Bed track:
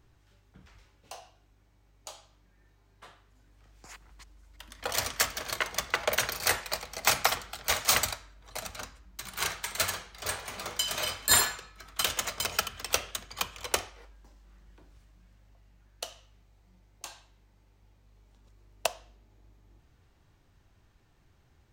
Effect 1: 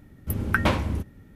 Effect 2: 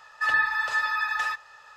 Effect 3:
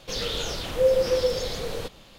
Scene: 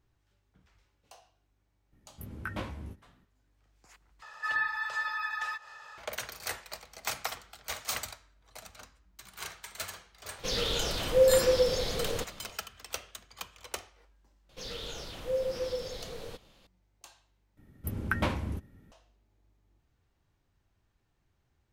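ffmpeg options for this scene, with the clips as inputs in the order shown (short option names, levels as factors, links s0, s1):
-filter_complex "[1:a]asplit=2[s0][s1];[3:a]asplit=2[s2][s3];[0:a]volume=0.316[s4];[s0]flanger=delay=15.5:depth=4.3:speed=2.3[s5];[2:a]acompressor=mode=upward:threshold=0.0282:ratio=2.5:attack=3.2:release=140:knee=2.83:detection=peak[s6];[s4]asplit=3[s7][s8][s9];[s7]atrim=end=4.224[s10];[s6]atrim=end=1.76,asetpts=PTS-STARTPTS,volume=0.422[s11];[s8]atrim=start=5.976:end=17.574[s12];[s1]atrim=end=1.35,asetpts=PTS-STARTPTS,volume=0.422[s13];[s9]atrim=start=18.916[s14];[s5]atrim=end=1.35,asetpts=PTS-STARTPTS,volume=0.251,afade=t=in:d=0.02,afade=t=out:st=1.33:d=0.02,adelay=1910[s15];[s2]atrim=end=2.18,asetpts=PTS-STARTPTS,volume=0.841,afade=t=in:d=0.05,afade=t=out:st=2.13:d=0.05,adelay=10360[s16];[s3]atrim=end=2.18,asetpts=PTS-STARTPTS,volume=0.282,afade=t=in:d=0.004:c=hsin,afade=t=out:st=2.176:d=0.004:c=hsin,adelay=14490[s17];[s10][s11]acrossfade=d=0.004:c1=hsin:c2=hsin[s18];[s18][s12]acrossfade=d=0.004:c1=hsin:c2=hsin[s19];[s19][s13]acrossfade=d=0.004:c1=hsin:c2=hsin[s20];[s20][s14]acrossfade=d=0.004:c1=hsin:c2=hsin[s21];[s21][s15][s16][s17]amix=inputs=4:normalize=0"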